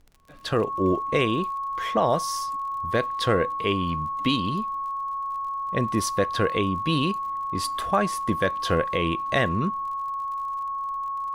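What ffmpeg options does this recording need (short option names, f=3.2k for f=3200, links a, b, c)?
-af "adeclick=t=4,bandreject=f=1.1k:w=30,agate=range=-21dB:threshold=-22dB"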